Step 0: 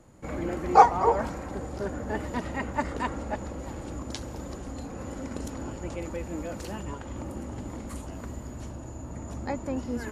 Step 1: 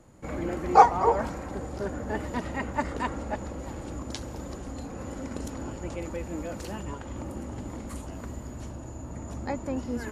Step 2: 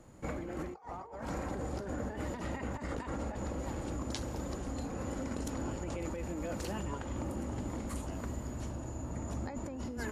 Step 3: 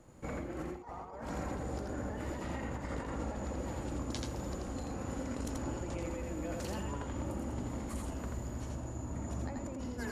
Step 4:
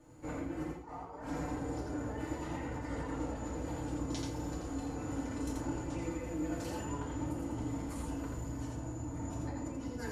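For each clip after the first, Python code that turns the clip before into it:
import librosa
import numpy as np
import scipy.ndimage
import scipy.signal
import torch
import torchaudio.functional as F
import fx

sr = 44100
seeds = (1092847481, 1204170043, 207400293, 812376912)

y1 = x
y2 = fx.over_compress(y1, sr, threshold_db=-35.0, ratio=-1.0)
y2 = F.gain(torch.from_numpy(y2), -4.5).numpy()
y3 = y2 + 10.0 ** (-3.0 / 20.0) * np.pad(y2, (int(84 * sr / 1000.0), 0))[:len(y2)]
y3 = F.gain(torch.from_numpy(y3), -2.5).numpy()
y4 = fx.rev_fdn(y3, sr, rt60_s=0.33, lf_ratio=1.1, hf_ratio=0.85, size_ms=20.0, drr_db=-4.5)
y4 = F.gain(torch.from_numpy(y4), -6.5).numpy()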